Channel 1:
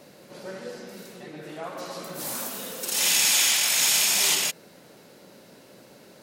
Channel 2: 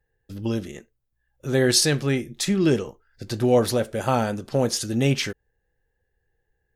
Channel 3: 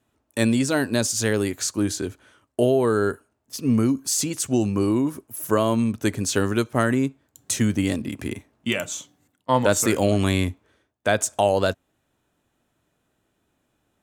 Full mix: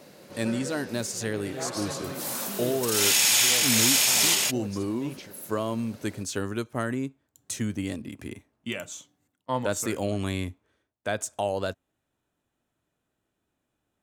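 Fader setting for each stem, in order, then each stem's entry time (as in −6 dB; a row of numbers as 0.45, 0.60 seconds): 0.0, −19.0, −8.5 decibels; 0.00, 0.00, 0.00 seconds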